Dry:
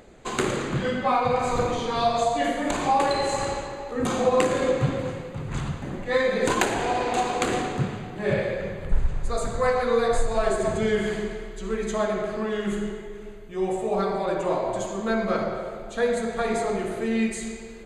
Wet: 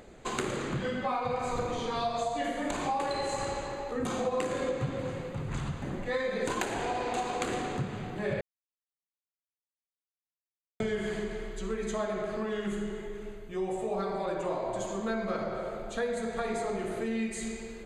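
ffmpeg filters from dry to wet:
ffmpeg -i in.wav -filter_complex "[0:a]asplit=3[link_01][link_02][link_03];[link_01]atrim=end=8.41,asetpts=PTS-STARTPTS,afade=type=out:start_time=8.406:duration=0.004:curve=hsin[link_04];[link_02]atrim=start=8.41:end=10.8,asetpts=PTS-STARTPTS,volume=0[link_05];[link_03]atrim=start=10.8,asetpts=PTS-STARTPTS,afade=type=in:duration=0.004:curve=hsin[link_06];[link_04][link_05][link_06]concat=n=3:v=0:a=1,acompressor=threshold=-30dB:ratio=2.5,volume=-1.5dB" out.wav

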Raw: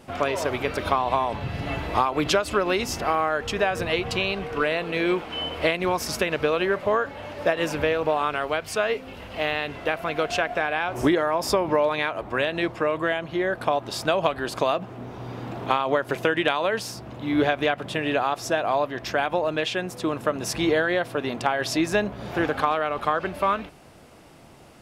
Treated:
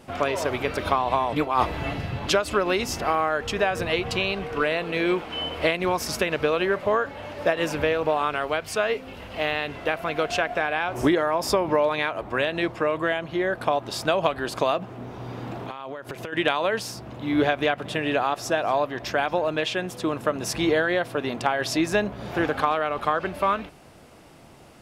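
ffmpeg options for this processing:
ffmpeg -i in.wav -filter_complex "[0:a]asplit=3[link_01][link_02][link_03];[link_01]afade=type=out:start_time=15.56:duration=0.02[link_04];[link_02]acompressor=threshold=-30dB:ratio=12:attack=3.2:release=140:knee=1:detection=peak,afade=type=in:start_time=15.56:duration=0.02,afade=type=out:start_time=16.32:duration=0.02[link_05];[link_03]afade=type=in:start_time=16.32:duration=0.02[link_06];[link_04][link_05][link_06]amix=inputs=3:normalize=0,asettb=1/sr,asplit=3[link_07][link_08][link_09];[link_07]atrim=end=17.544[link_10];[link_08]atrim=start=17.54:end=20.01,asetpts=PTS-STARTPTS,afade=type=in:duration=0.004:curve=qsin,afade=type=out:start_time=2.466:duration=0.004:curve=qsin,aecho=1:1:231:0.0631,atrim=end_sample=108927[link_11];[link_09]atrim=start=20.006[link_12];[link_10][link_11]acrossfade=duration=0.004:curve1=hsin:curve2=qsin[link_13];[link_13][link_12]acrossfade=duration=0.004:curve1=qsin:curve2=hsin,asplit=3[link_14][link_15][link_16];[link_14]atrim=end=1.332[link_17];[link_15]atrim=start=1.328:end=2.272,asetpts=PTS-STARTPTS,areverse[link_18];[link_16]atrim=start=2.268[link_19];[link_17][link_18]acrossfade=duration=0.004:curve1=hsin:curve2=hsin[link_20];[link_20][link_19]acrossfade=duration=0.004:curve1=hsin:curve2=hsin" out.wav

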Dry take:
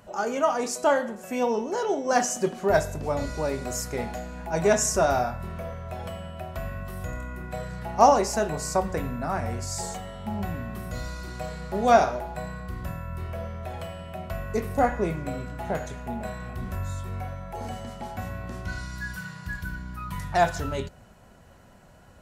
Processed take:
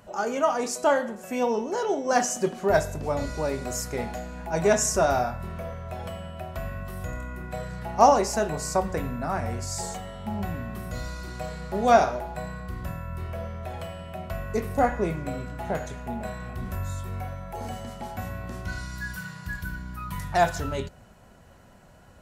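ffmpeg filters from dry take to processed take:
ffmpeg -i in.wav -filter_complex "[0:a]asettb=1/sr,asplit=3[link_01][link_02][link_03];[link_01]atrim=end=16.654[link_04];[link_02]atrim=start=16.65:end=20.59,asetpts=PTS-STARTPTS,afade=type=in:duration=0.004:curve=qsin,afade=type=out:start_time=3.936:duration=0.004:curve=qsin,highshelf=frequency=12000:gain=7.5[link_05];[link_03]atrim=start=20.586[link_06];[link_04][link_05]acrossfade=duration=0.004:curve1=hsin:curve2=qsin[link_07];[link_07][link_06]acrossfade=duration=0.004:curve1=qsin:curve2=hsin" out.wav

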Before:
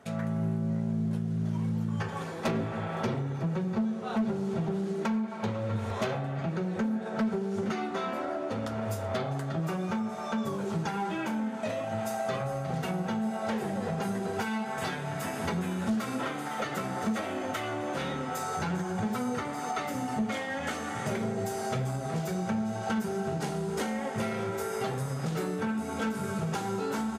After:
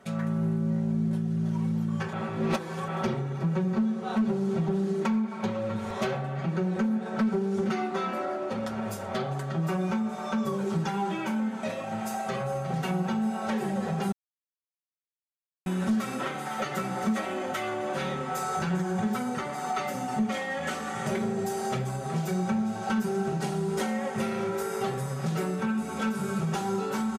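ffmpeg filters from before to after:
ffmpeg -i in.wav -filter_complex "[0:a]asplit=5[link_01][link_02][link_03][link_04][link_05];[link_01]atrim=end=2.132[link_06];[link_02]atrim=start=2.128:end=2.882,asetpts=PTS-STARTPTS,areverse[link_07];[link_03]atrim=start=2.878:end=14.12,asetpts=PTS-STARTPTS,afade=type=out:start_time=11.238:duration=0.004:curve=hsin[link_08];[link_04]atrim=start=14.12:end=15.66,asetpts=PTS-STARTPTS,volume=0[link_09];[link_05]atrim=start=15.66,asetpts=PTS-STARTPTS,afade=type=in:duration=0.004:curve=hsin[link_10];[link_06][link_07]acrossfade=duration=0.004:curve1=hsin:curve2=hsin[link_11];[link_08][link_09][link_10]concat=n=3:v=0:a=1[link_12];[link_11][link_12]acrossfade=duration=0.004:curve1=hsin:curve2=hsin,aecho=1:1:5.3:0.62" out.wav

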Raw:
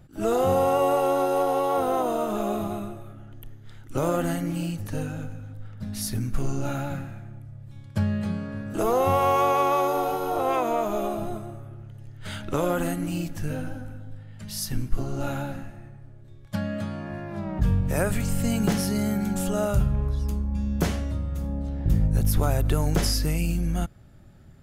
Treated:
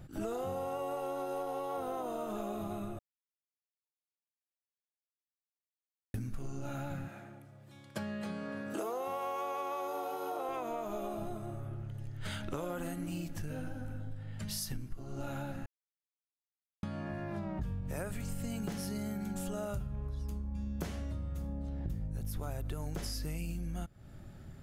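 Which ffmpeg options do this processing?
ffmpeg -i in.wav -filter_complex "[0:a]asettb=1/sr,asplit=3[link_01][link_02][link_03];[link_01]atrim=end=7.084[link_04];[link_02]atrim=start=7.08:end=10.49,asetpts=PTS-STARTPTS,afade=type=in:duration=0.004:curve=qsin,afade=type=out:start_time=3.406:duration=0.004:curve=qsin,highpass=290[link_05];[link_03]atrim=start=10.486[link_06];[link_04][link_05]acrossfade=duration=0.004:curve1=hsin:curve2=qsin[link_07];[link_07][link_06]acrossfade=duration=0.004:curve1=qsin:curve2=hsin,asplit=5[link_08][link_09][link_10][link_11][link_12];[link_08]atrim=end=2.99,asetpts=PTS-STARTPTS,afade=type=out:start_time=2.986:duration=0.004:curve=hsin[link_13];[link_09]atrim=start=2.99:end=6.14,asetpts=PTS-STARTPTS,volume=0[link_14];[link_10]atrim=start=6.14:end=15.66,asetpts=PTS-STARTPTS,afade=type=in:duration=0.004:curve=hsin,afade=type=out:start_time=9.516:duration=0.004:curve=hsin[link_15];[link_11]atrim=start=15.66:end=16.83,asetpts=PTS-STARTPTS,volume=0[link_16];[link_12]atrim=start=16.83,asetpts=PTS-STARTPTS,afade=type=in:duration=0.004:curve=hsin[link_17];[link_13][link_14][link_15][link_16][link_17]concat=n=5:v=0:a=1,acompressor=threshold=-37dB:ratio=6,volume=1dB" out.wav

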